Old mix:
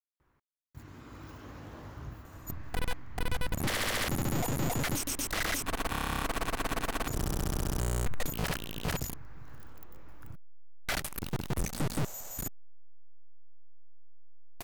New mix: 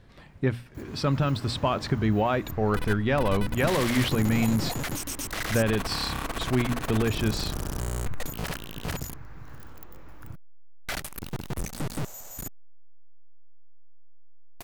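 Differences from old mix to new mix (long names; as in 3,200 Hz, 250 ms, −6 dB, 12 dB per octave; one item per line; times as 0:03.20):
speech: unmuted
first sound +5.5 dB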